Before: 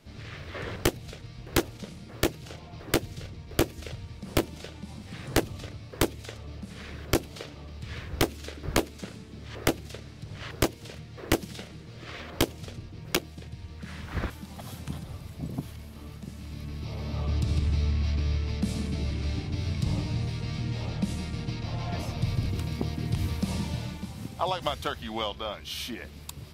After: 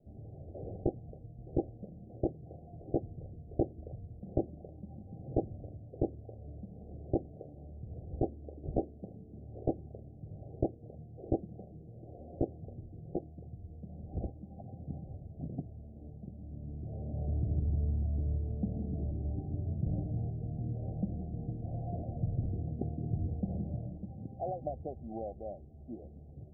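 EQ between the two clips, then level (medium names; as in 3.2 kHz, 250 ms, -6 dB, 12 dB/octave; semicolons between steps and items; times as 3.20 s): Chebyshev low-pass 790 Hz, order 10; -5.0 dB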